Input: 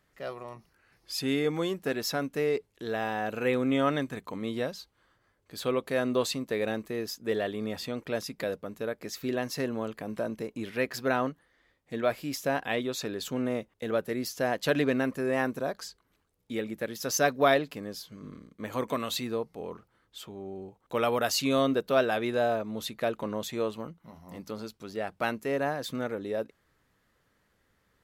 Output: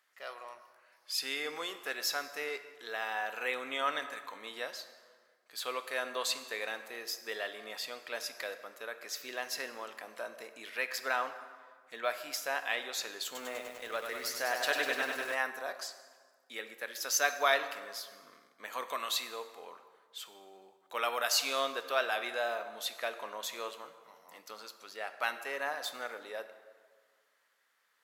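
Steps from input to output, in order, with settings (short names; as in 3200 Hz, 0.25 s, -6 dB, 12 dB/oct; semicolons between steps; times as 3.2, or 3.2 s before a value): HPF 960 Hz 12 dB/oct; plate-style reverb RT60 1.7 s, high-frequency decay 0.65×, DRR 9 dB; 13.25–15.35 lo-fi delay 99 ms, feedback 80%, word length 9-bit, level -5 dB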